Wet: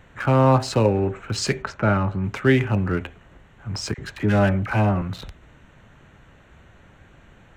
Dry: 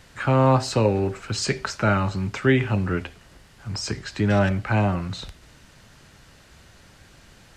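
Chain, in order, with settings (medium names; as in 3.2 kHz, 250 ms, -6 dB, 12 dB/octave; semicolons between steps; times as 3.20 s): local Wiener filter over 9 samples; 1.62–2.24 s: low-pass 1.9 kHz 6 dB/octave; 3.94–5.02 s: phase dispersion lows, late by 42 ms, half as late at 870 Hz; trim +1.5 dB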